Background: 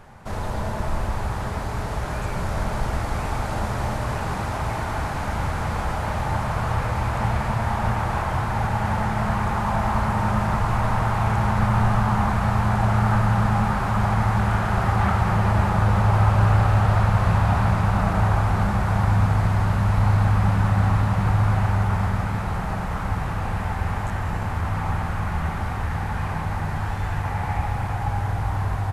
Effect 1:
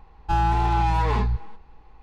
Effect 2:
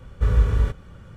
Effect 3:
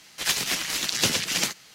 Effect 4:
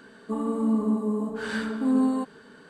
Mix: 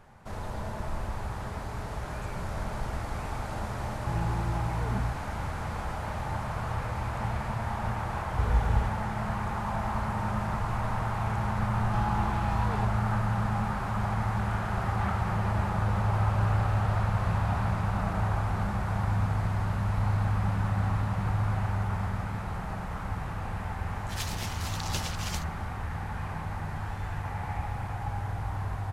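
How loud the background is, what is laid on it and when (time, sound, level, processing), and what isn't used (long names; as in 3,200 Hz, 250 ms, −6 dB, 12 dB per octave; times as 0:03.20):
background −8.5 dB
0:03.76: mix in 1 −2 dB + resonant band-pass 150 Hz, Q 1.2
0:08.17: mix in 2 −6 dB + mains-hum notches 50/100/150/200/250/300/350/400/450 Hz
0:11.63: mix in 1 −11.5 dB
0:23.91: mix in 3 −13 dB
not used: 4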